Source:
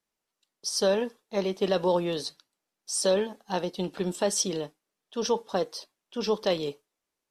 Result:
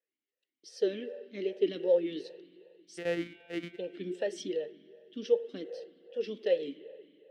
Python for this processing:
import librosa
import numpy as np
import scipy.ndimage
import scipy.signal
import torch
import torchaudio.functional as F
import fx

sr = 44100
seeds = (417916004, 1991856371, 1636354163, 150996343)

y = fx.sample_sort(x, sr, block=256, at=(2.97, 3.77), fade=0.02)
y = fx.rev_spring(y, sr, rt60_s=2.5, pass_ms=(45,), chirp_ms=55, drr_db=13.5)
y = fx.vowel_sweep(y, sr, vowels='e-i', hz=2.6)
y = F.gain(torch.from_numpy(y), 4.0).numpy()